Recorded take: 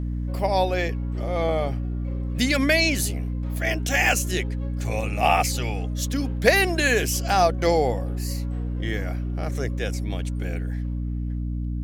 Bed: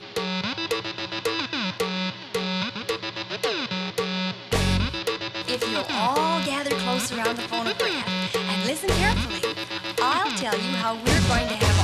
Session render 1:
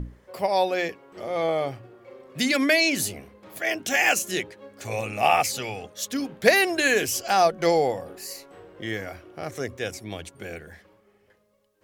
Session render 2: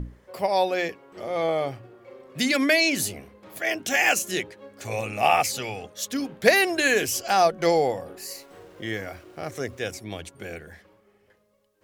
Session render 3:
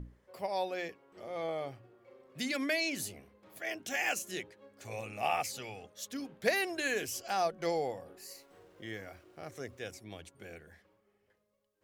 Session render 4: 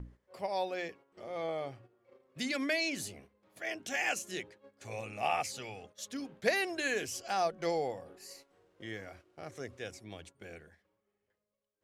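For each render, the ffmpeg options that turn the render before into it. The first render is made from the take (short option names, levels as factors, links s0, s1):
-af "bandreject=f=60:t=h:w=6,bandreject=f=120:t=h:w=6,bandreject=f=180:t=h:w=6,bandreject=f=240:t=h:w=6,bandreject=f=300:t=h:w=6"
-filter_complex "[0:a]asettb=1/sr,asplit=3[s0][s1][s2];[s0]atrim=end=8.254[s3];[s1]atrim=start=8.25:end=9.99,asetpts=PTS-STARTPTS,afade=t=in:d=0.004:c=qsin,afade=t=out:st=1.736:d=0.004:c=qsin,aeval=exprs='val(0)*gte(abs(val(0)),0.00237)':c=same[s4];[s2]atrim=start=9.986[s5];[s3][s4]acrossfade=d=0.004:c1=hsin:c2=qsin[s6];[s6][s5]acrossfade=d=0.004:c1=qsin:c2=hsin"
-af "volume=0.251"
-af "lowpass=10000,agate=range=0.355:threshold=0.00178:ratio=16:detection=peak"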